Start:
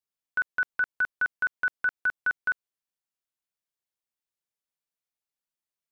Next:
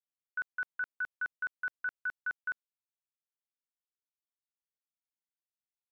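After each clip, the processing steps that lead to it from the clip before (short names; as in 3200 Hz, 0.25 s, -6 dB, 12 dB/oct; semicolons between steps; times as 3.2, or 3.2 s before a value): gate with hold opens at -39 dBFS; gain -9 dB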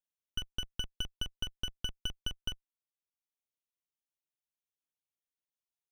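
minimum comb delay 0.31 ms; transient shaper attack +10 dB, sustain -5 dB; gain -3.5 dB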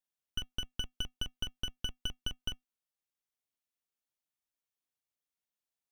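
resonator 250 Hz, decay 0.17 s, harmonics odd, mix 50%; gain +5.5 dB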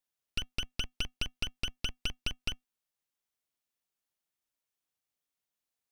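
Doppler distortion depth 0.67 ms; gain +2.5 dB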